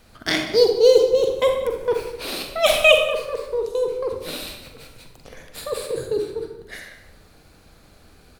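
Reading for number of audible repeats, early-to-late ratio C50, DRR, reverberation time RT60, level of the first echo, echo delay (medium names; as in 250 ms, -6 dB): 1, 4.5 dB, 3.0 dB, 0.85 s, -17.0 dB, 185 ms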